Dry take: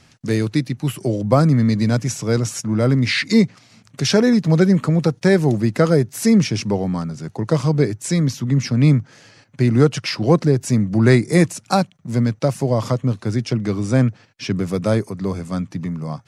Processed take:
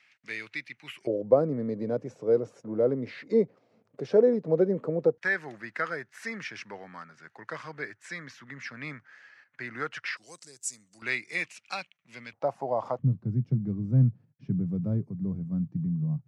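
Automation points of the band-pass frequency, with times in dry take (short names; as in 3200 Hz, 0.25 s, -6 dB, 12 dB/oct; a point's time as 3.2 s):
band-pass, Q 3.4
2200 Hz
from 1.07 s 480 Hz
from 5.18 s 1700 Hz
from 10.17 s 7900 Hz
from 11.02 s 2500 Hz
from 12.33 s 790 Hz
from 12.99 s 150 Hz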